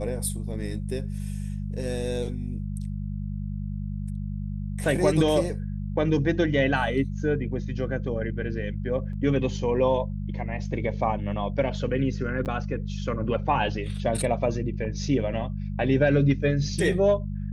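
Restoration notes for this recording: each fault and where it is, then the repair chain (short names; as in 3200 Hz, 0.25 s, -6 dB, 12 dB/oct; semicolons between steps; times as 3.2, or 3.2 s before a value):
hum 50 Hz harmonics 4 -31 dBFS
9.13 gap 2.5 ms
12.45–12.46 gap 8.6 ms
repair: de-hum 50 Hz, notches 4; interpolate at 9.13, 2.5 ms; interpolate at 12.45, 8.6 ms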